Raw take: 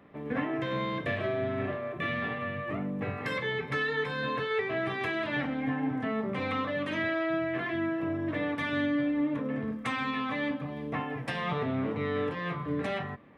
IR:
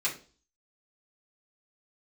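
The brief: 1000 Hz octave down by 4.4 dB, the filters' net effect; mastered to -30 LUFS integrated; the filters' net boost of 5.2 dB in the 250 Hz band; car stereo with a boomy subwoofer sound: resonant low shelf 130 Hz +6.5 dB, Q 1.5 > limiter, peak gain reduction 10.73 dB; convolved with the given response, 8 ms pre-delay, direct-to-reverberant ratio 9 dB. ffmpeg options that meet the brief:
-filter_complex "[0:a]equalizer=f=250:t=o:g=8,equalizer=f=1k:t=o:g=-6,asplit=2[a][b];[1:a]atrim=start_sample=2205,adelay=8[c];[b][c]afir=irnorm=-1:irlink=0,volume=-16dB[d];[a][d]amix=inputs=2:normalize=0,lowshelf=f=130:t=q:w=1.5:g=6.5,volume=3dB,alimiter=limit=-22dB:level=0:latency=1"

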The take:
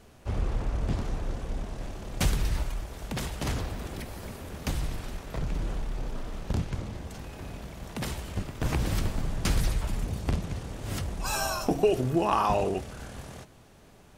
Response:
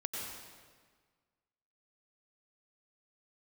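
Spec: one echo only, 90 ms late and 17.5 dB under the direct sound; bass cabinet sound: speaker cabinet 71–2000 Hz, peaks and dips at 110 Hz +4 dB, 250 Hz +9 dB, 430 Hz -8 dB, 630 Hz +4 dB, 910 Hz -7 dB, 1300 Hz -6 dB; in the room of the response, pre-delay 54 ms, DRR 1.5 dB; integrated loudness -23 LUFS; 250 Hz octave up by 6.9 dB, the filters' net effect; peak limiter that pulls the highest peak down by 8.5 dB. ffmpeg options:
-filter_complex "[0:a]equalizer=f=250:t=o:g=4,alimiter=limit=-18dB:level=0:latency=1,aecho=1:1:90:0.133,asplit=2[a][b];[1:a]atrim=start_sample=2205,adelay=54[c];[b][c]afir=irnorm=-1:irlink=0,volume=-3.5dB[d];[a][d]amix=inputs=2:normalize=0,highpass=f=71:w=0.5412,highpass=f=71:w=1.3066,equalizer=f=110:t=q:w=4:g=4,equalizer=f=250:t=q:w=4:g=9,equalizer=f=430:t=q:w=4:g=-8,equalizer=f=630:t=q:w=4:g=4,equalizer=f=910:t=q:w=4:g=-7,equalizer=f=1.3k:t=q:w=4:g=-6,lowpass=f=2k:w=0.5412,lowpass=f=2k:w=1.3066,volume=6.5dB"

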